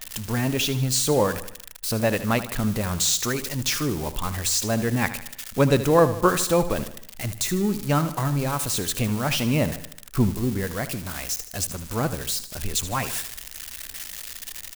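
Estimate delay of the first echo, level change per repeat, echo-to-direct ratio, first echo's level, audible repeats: 77 ms, -6.0 dB, -12.0 dB, -13.0 dB, 4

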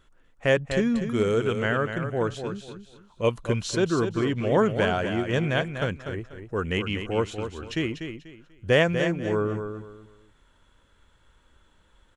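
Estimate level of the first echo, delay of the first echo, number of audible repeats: -8.0 dB, 0.244 s, 3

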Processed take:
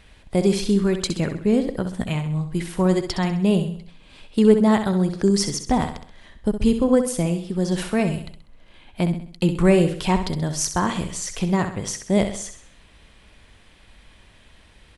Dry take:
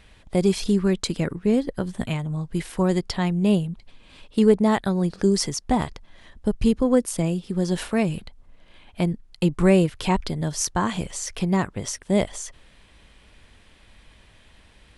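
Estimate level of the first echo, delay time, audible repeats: -9.0 dB, 65 ms, 4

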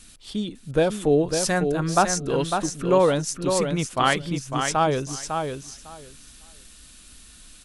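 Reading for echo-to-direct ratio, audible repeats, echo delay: -6.0 dB, 2, 0.552 s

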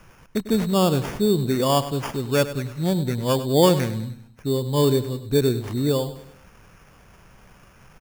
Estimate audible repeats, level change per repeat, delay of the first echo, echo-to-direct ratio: 4, -7.0 dB, 0.1 s, -12.5 dB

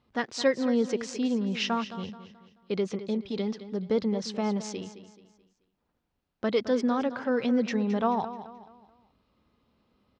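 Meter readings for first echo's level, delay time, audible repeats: -13.0 dB, 0.216 s, 3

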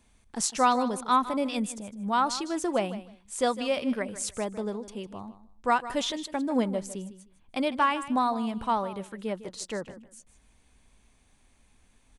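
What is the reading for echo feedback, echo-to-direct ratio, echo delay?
19%, -14.5 dB, 0.155 s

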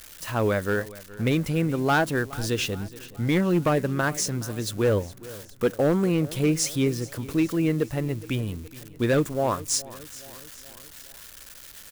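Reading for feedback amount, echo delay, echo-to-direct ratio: 54%, 0.42 s, -17.5 dB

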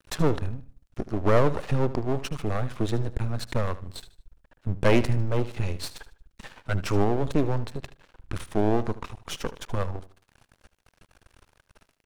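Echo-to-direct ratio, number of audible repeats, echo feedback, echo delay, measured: -15.0 dB, 3, 34%, 76 ms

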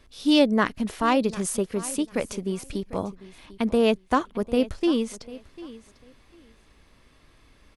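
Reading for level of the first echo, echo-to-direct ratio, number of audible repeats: -18.0 dB, -18.0 dB, 2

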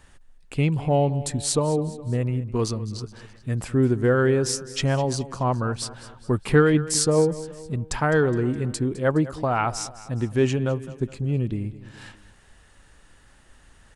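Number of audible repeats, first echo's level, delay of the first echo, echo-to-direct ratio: 3, -16.5 dB, 0.208 s, -15.5 dB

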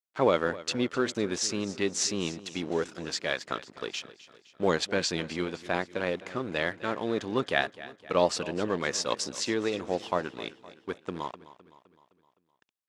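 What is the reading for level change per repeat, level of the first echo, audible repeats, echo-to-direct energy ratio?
-5.5 dB, -17.0 dB, 4, -15.5 dB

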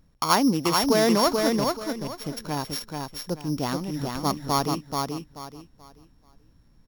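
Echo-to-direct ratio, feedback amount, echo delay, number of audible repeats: -3.5 dB, 27%, 0.433 s, 3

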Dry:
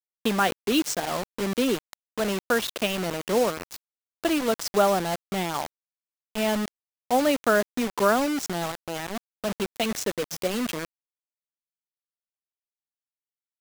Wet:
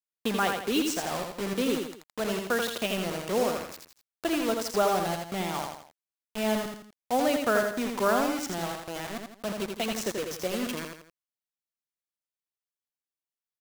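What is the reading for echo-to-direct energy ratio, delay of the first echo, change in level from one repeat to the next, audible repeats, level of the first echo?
-4.0 dB, 83 ms, -8.0 dB, 3, -4.5 dB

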